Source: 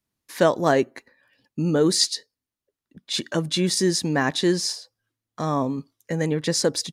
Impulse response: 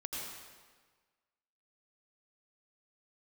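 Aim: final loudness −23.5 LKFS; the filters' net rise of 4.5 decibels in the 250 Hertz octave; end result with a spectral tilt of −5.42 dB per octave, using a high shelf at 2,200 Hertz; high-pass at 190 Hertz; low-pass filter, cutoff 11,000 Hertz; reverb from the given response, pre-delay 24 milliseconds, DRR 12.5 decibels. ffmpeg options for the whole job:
-filter_complex "[0:a]highpass=190,lowpass=11000,equalizer=frequency=250:width_type=o:gain=8.5,highshelf=frequency=2200:gain=-6.5,asplit=2[link_01][link_02];[1:a]atrim=start_sample=2205,adelay=24[link_03];[link_02][link_03]afir=irnorm=-1:irlink=0,volume=-14dB[link_04];[link_01][link_04]amix=inputs=2:normalize=0,volume=-2dB"

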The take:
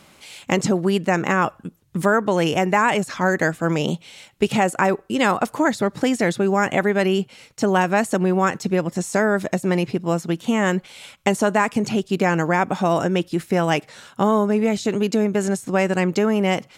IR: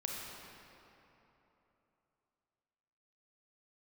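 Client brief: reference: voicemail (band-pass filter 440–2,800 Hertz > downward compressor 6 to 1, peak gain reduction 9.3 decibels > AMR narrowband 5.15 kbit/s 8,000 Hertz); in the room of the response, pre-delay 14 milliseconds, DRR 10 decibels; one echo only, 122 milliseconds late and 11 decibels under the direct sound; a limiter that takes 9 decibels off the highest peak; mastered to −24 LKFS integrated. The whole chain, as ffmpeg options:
-filter_complex "[0:a]alimiter=limit=-13.5dB:level=0:latency=1,aecho=1:1:122:0.282,asplit=2[link_01][link_02];[1:a]atrim=start_sample=2205,adelay=14[link_03];[link_02][link_03]afir=irnorm=-1:irlink=0,volume=-11.5dB[link_04];[link_01][link_04]amix=inputs=2:normalize=0,highpass=440,lowpass=2800,acompressor=threshold=-28dB:ratio=6,volume=11dB" -ar 8000 -c:a libopencore_amrnb -b:a 5150

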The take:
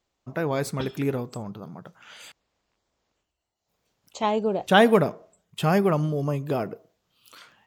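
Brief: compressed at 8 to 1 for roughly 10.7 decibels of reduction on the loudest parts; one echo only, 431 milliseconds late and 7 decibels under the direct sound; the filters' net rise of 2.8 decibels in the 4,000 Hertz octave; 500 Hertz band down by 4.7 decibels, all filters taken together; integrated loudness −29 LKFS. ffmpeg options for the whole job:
ffmpeg -i in.wav -af "equalizer=frequency=500:width_type=o:gain=-6,equalizer=frequency=4000:width_type=o:gain=4,acompressor=threshold=-24dB:ratio=8,aecho=1:1:431:0.447,volume=2dB" out.wav

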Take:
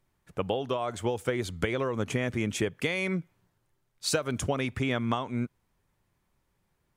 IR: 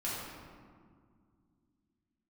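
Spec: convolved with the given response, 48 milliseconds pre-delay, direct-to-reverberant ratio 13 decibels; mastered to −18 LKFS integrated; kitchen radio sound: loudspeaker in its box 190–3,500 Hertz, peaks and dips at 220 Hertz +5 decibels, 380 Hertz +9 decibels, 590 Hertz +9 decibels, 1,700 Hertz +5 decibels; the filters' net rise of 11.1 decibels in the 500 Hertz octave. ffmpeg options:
-filter_complex "[0:a]equalizer=frequency=500:width_type=o:gain=5,asplit=2[link_01][link_02];[1:a]atrim=start_sample=2205,adelay=48[link_03];[link_02][link_03]afir=irnorm=-1:irlink=0,volume=-17.5dB[link_04];[link_01][link_04]amix=inputs=2:normalize=0,highpass=190,equalizer=frequency=220:width_type=q:width=4:gain=5,equalizer=frequency=380:width_type=q:width=4:gain=9,equalizer=frequency=590:width_type=q:width=4:gain=9,equalizer=frequency=1700:width_type=q:width=4:gain=5,lowpass=frequency=3500:width=0.5412,lowpass=frequency=3500:width=1.3066,volume=5dB"

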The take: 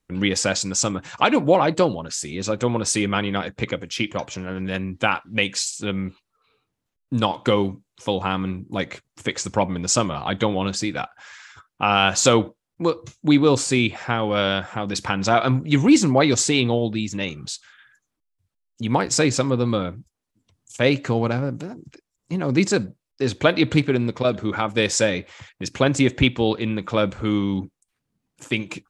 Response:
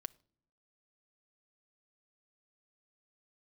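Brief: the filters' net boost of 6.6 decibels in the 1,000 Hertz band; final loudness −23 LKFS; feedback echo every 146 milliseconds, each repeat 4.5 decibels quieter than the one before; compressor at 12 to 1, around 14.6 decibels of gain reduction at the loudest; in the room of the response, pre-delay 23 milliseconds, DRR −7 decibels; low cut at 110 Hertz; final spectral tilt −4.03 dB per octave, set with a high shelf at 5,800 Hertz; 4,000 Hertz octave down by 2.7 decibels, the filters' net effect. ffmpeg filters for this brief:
-filter_complex "[0:a]highpass=110,equalizer=frequency=1000:width_type=o:gain=9,equalizer=frequency=4000:width_type=o:gain=-6,highshelf=frequency=5800:gain=4.5,acompressor=threshold=-23dB:ratio=12,aecho=1:1:146|292|438|584|730|876|1022|1168|1314:0.596|0.357|0.214|0.129|0.0772|0.0463|0.0278|0.0167|0.01,asplit=2[link_01][link_02];[1:a]atrim=start_sample=2205,adelay=23[link_03];[link_02][link_03]afir=irnorm=-1:irlink=0,volume=11dB[link_04];[link_01][link_04]amix=inputs=2:normalize=0,volume=-3.5dB"

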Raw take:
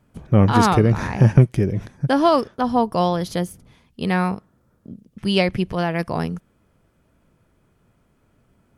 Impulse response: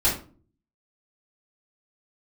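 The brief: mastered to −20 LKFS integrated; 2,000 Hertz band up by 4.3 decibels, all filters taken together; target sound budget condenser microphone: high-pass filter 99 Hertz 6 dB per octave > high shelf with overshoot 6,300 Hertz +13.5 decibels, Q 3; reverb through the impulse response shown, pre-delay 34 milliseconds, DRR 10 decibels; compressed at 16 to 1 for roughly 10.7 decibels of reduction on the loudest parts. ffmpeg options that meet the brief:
-filter_complex "[0:a]equalizer=frequency=2000:width_type=o:gain=7,acompressor=threshold=-17dB:ratio=16,asplit=2[link_01][link_02];[1:a]atrim=start_sample=2205,adelay=34[link_03];[link_02][link_03]afir=irnorm=-1:irlink=0,volume=-23dB[link_04];[link_01][link_04]amix=inputs=2:normalize=0,highpass=frequency=99:poles=1,highshelf=frequency=6300:width_type=q:width=3:gain=13.5,volume=4dB"

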